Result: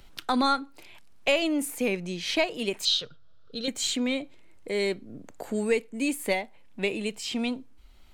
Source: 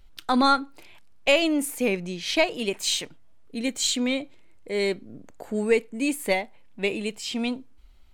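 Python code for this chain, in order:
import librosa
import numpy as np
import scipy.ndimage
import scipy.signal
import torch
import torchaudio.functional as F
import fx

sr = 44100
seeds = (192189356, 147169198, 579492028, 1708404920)

y = fx.curve_eq(x, sr, hz=(140.0, 310.0, 490.0, 890.0, 1400.0, 2100.0, 3600.0, 5300.0, 7900.0), db=(0, -15, 0, -15, 6, -18, 10, 4, -13), at=(2.85, 3.68))
y = fx.band_squash(y, sr, depth_pct=40)
y = y * 10.0 ** (-2.5 / 20.0)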